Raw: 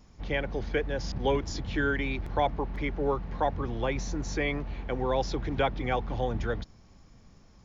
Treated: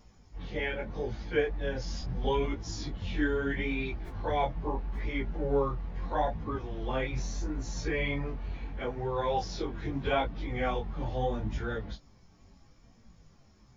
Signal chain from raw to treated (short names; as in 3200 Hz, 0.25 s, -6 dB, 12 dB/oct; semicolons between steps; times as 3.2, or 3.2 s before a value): plain phase-vocoder stretch 1.8×; chorus 0.77 Hz, delay 17.5 ms, depth 6.3 ms; gain +3 dB